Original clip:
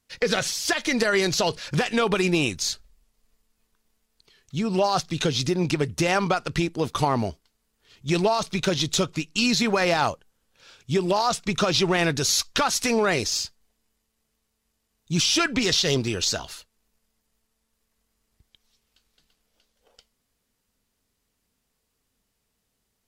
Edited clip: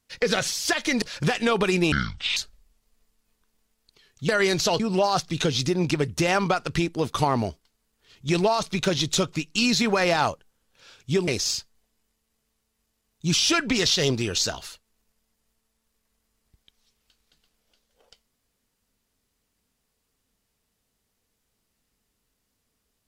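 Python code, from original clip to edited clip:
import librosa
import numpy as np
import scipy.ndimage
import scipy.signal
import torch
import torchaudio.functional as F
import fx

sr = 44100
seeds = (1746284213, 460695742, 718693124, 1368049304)

y = fx.edit(x, sr, fx.move(start_s=1.02, length_s=0.51, to_s=4.6),
    fx.speed_span(start_s=2.43, length_s=0.25, speed=0.56),
    fx.cut(start_s=11.08, length_s=2.06), tone=tone)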